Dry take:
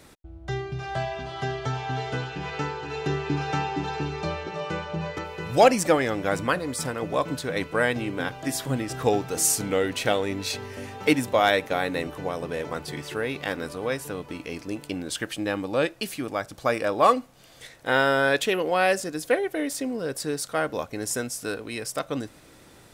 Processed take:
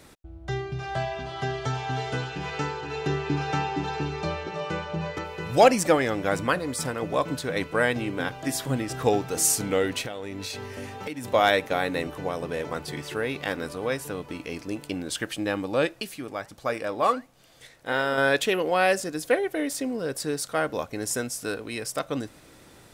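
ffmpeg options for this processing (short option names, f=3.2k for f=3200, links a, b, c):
-filter_complex "[0:a]asettb=1/sr,asplit=3[a][b][c];[a]atrim=end=1.544[d];[b]atrim=start=1.54:end=2.81,asetpts=PTS-STARTPTS,afade=t=in:d=0.004:c=qsin,afade=t=out:st=1.266:d=0.004:c=qsin,highshelf=f=8.4k:g=9[e];[c]atrim=start=2.806[f];[d][e]acrossfade=d=0.004:c1=hsin:c2=qsin[g];[g][f]acrossfade=d=0.004:c1=qsin:c2=hsin,asettb=1/sr,asplit=3[h][i][j];[h]atrim=end=10.014[k];[i]atrim=start=10.01:end=11.25,asetpts=PTS-STARTPTS,afade=t=in:d=0.004:c=qsin,afade=t=out:st=1.236:d=0.004:c=qsin,acompressor=threshold=-30dB:ratio=10:attack=3.2:release=140:knee=1:detection=peak[l];[j]atrim=start=11.246[m];[k][l]acrossfade=d=0.004:c1=hsin:c2=qsin[n];[n][m]acrossfade=d=0.004:c1=qsin:c2=hsin,asettb=1/sr,asplit=3[o][p][q];[o]atrim=end=16.024[r];[p]atrim=start=16.02:end=18.18,asetpts=PTS-STARTPTS,afade=t=in:d=0.004:c=qsin,afade=t=out:st=2.156:d=0.004:c=qsin,flanger=delay=1.5:depth=7.2:regen=86:speed=1.5:shape=triangular[s];[q]atrim=start=18.176[t];[r][s]acrossfade=d=0.004:c1=hsin:c2=qsin[u];[u][t]acrossfade=d=0.004:c1=qsin:c2=hsin"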